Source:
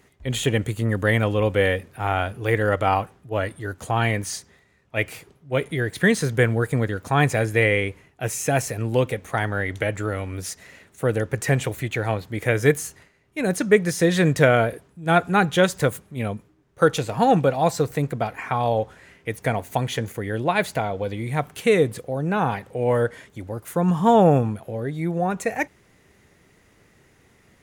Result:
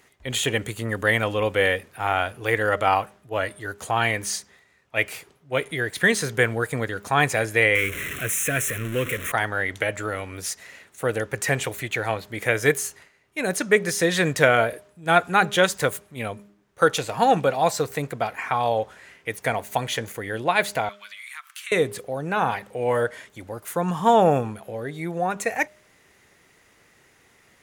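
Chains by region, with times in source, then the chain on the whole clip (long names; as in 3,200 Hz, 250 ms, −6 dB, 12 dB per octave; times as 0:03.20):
0:07.75–0:09.32: converter with a step at zero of −24 dBFS + phaser with its sweep stopped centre 2,000 Hz, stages 4
0:20.89–0:21.72: elliptic high-pass filter 1,200 Hz, stop band 70 dB + downward compressor 3 to 1, threshold −38 dBFS
whole clip: low-shelf EQ 400 Hz −11.5 dB; hum removal 203.7 Hz, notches 3; level +3 dB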